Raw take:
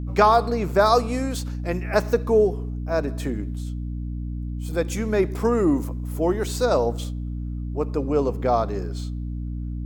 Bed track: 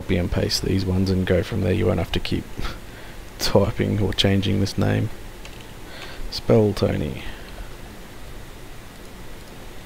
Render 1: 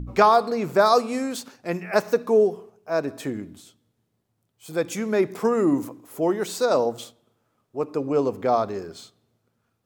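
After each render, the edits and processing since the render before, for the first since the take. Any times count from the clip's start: de-hum 60 Hz, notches 5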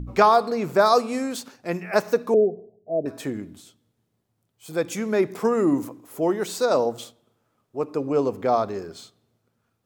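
2.34–3.06 s: elliptic low-pass 670 Hz, stop band 50 dB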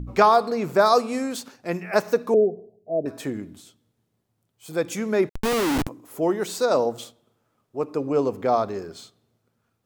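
5.29–5.87 s: Schmitt trigger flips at -27 dBFS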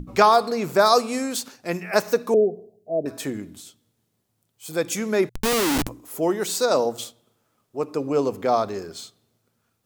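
treble shelf 3.1 kHz +8 dB; hum notches 60/120 Hz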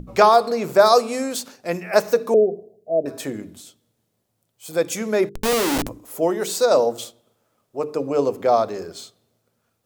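peaking EQ 570 Hz +5.5 dB 0.77 oct; hum notches 50/100/150/200/250/300/350/400/450 Hz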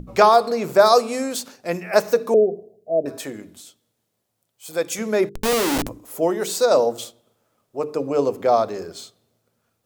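3.19–4.99 s: bass shelf 380 Hz -7 dB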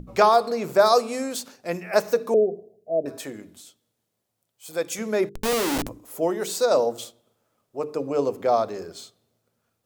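trim -3.5 dB

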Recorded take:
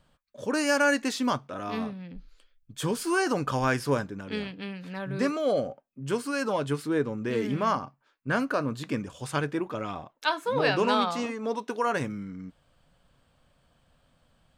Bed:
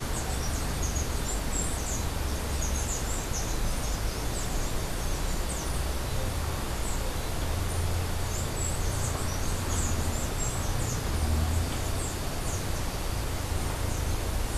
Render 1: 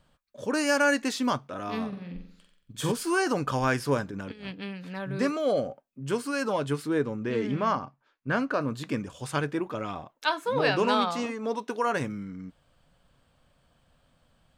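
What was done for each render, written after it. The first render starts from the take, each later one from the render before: 1.88–2.92 s: flutter echo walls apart 7.8 m, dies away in 0.61 s; 4.07–4.53 s: compressor with a negative ratio -37 dBFS, ratio -0.5; 7.17–8.61 s: distance through air 72 m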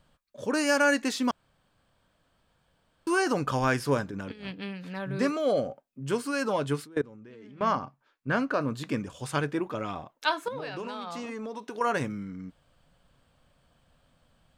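1.31–3.07 s: room tone; 6.84–7.61 s: level held to a coarse grid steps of 24 dB; 10.48–11.81 s: compression 16:1, threshold -32 dBFS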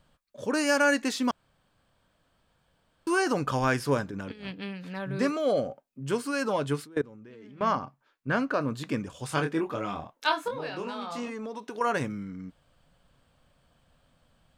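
9.28–11.28 s: doubling 25 ms -5.5 dB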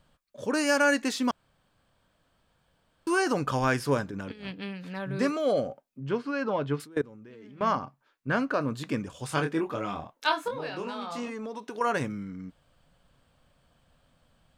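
6.00–6.80 s: distance through air 240 m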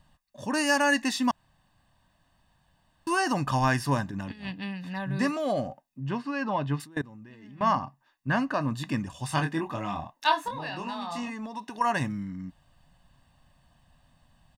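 comb 1.1 ms, depth 73%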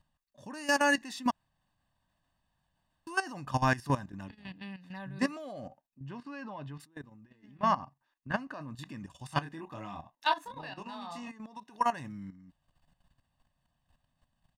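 level held to a coarse grid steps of 12 dB; upward expansion 1.5:1, over -35 dBFS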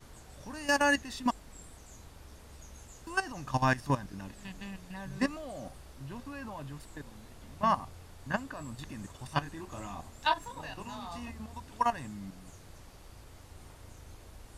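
add bed -21 dB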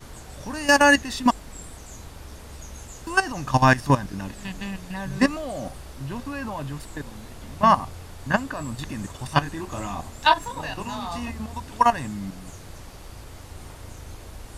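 trim +10.5 dB

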